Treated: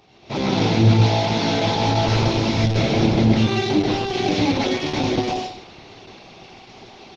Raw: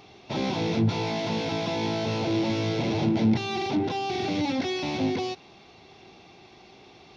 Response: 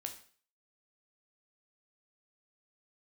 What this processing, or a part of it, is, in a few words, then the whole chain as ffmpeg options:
speakerphone in a meeting room: -filter_complex "[0:a]asplit=3[a][b][c];[a]afade=t=out:st=2.57:d=0.02[d];[b]adynamicequalizer=threshold=0.00316:dfrequency=1000:dqfactor=6.1:tfrequency=1000:tqfactor=6.1:attack=5:release=100:ratio=0.375:range=1.5:mode=cutabove:tftype=bell,afade=t=in:st=2.57:d=0.02,afade=t=out:st=3.82:d=0.02[e];[c]afade=t=in:st=3.82:d=0.02[f];[d][e][f]amix=inputs=3:normalize=0,aecho=1:1:128|256|384:0.708|0.135|0.0256[g];[1:a]atrim=start_sample=2205[h];[g][h]afir=irnorm=-1:irlink=0,dynaudnorm=f=200:g=3:m=10dB" -ar 48000 -c:a libopus -b:a 12k

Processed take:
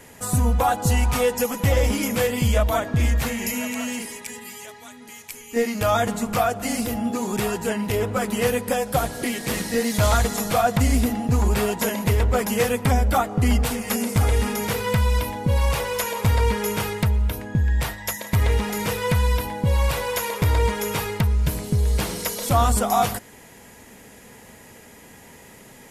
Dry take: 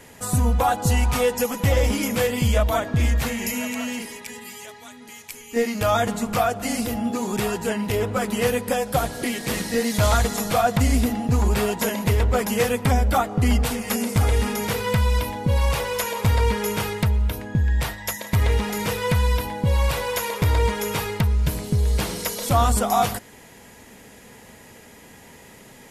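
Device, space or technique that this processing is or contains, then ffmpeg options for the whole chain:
exciter from parts: -filter_complex "[0:a]asettb=1/sr,asplit=3[a][b][c];[a]atrim=end=3.754[d];[b]atrim=start=3.75:end=4.36,asetpts=PTS-STARTPTS,afade=t=in:d=0.004:c=qsin,afade=t=out:st=0.606:d=0.004:c=qsin,equalizer=f=8.4k:w=1.5:g=4.5[e];[c]atrim=start=4.356[f];[d][e]acrossfade=d=0.004:c1=hsin:c2=qsin[g];[g][f]acrossfade=d=0.004:c1=qsin:c2=hsin,asplit=2[h][i];[i]highpass=3.2k,asoftclip=type=tanh:threshold=-34dB,highpass=3.4k,volume=-11dB[j];[h][j]amix=inputs=2:normalize=0"

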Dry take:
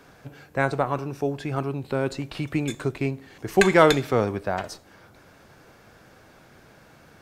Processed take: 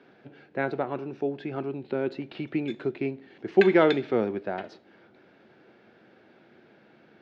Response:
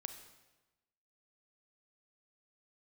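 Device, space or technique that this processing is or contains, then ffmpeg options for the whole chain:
kitchen radio: -af "highpass=180,equalizer=f=220:t=q:w=4:g=6,equalizer=f=360:t=q:w=4:g=8,equalizer=f=1.1k:t=q:w=4:g=-8,lowpass=f=3.8k:w=0.5412,lowpass=f=3.8k:w=1.3066,volume=-5dB"

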